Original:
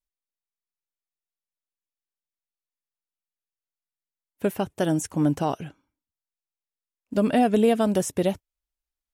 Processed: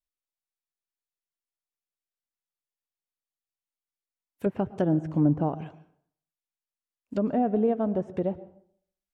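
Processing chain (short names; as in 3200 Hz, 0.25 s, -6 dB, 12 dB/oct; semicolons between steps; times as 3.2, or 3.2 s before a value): treble ducked by the level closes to 980 Hz, closed at -20 dBFS; 4.46–5.49 low shelf 460 Hz +6 dB; reverb RT60 0.60 s, pre-delay 0.103 s, DRR 16.5 dB; gain -4.5 dB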